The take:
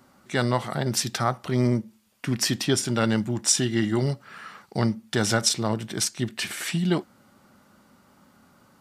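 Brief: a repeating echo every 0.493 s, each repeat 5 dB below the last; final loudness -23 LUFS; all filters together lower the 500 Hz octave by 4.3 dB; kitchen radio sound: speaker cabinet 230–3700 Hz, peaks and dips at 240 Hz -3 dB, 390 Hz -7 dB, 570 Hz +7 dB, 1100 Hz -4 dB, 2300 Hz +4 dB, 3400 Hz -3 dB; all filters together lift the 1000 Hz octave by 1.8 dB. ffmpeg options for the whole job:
-af "highpass=230,equalizer=f=240:t=q:w=4:g=-3,equalizer=f=390:t=q:w=4:g=-7,equalizer=f=570:t=q:w=4:g=7,equalizer=f=1.1k:t=q:w=4:g=-4,equalizer=f=2.3k:t=q:w=4:g=4,equalizer=f=3.4k:t=q:w=4:g=-3,lowpass=f=3.7k:w=0.5412,lowpass=f=3.7k:w=1.3066,equalizer=f=500:t=o:g=-8.5,equalizer=f=1k:t=o:g=6.5,aecho=1:1:493|986|1479|1972|2465|2958|3451:0.562|0.315|0.176|0.0988|0.0553|0.031|0.0173,volume=6.5dB"

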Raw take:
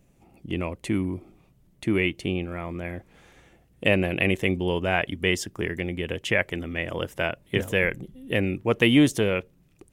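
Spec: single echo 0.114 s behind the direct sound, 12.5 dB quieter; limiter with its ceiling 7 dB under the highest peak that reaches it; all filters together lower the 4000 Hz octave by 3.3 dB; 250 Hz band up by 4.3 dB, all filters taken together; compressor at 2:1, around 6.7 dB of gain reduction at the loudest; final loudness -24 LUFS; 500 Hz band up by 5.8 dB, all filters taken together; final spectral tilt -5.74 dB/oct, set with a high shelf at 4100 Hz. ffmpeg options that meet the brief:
-af "equalizer=f=250:t=o:g=3.5,equalizer=f=500:t=o:g=6,equalizer=f=4k:t=o:g=-8.5,highshelf=f=4.1k:g=5,acompressor=threshold=-22dB:ratio=2,alimiter=limit=-14dB:level=0:latency=1,aecho=1:1:114:0.237,volume=3.5dB"

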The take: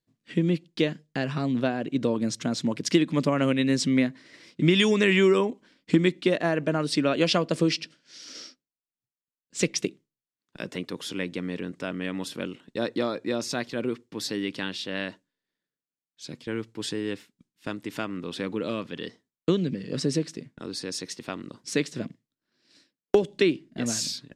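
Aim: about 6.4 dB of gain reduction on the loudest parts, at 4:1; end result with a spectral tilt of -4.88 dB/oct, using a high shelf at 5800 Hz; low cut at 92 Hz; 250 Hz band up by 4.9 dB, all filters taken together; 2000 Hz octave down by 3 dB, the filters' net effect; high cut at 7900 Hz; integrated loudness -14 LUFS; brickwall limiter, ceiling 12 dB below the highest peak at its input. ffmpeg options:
-af "highpass=92,lowpass=7.9k,equalizer=f=250:t=o:g=6.5,equalizer=f=2k:t=o:g=-4.5,highshelf=f=5.8k:g=5,acompressor=threshold=-20dB:ratio=4,volume=17dB,alimiter=limit=-3.5dB:level=0:latency=1"

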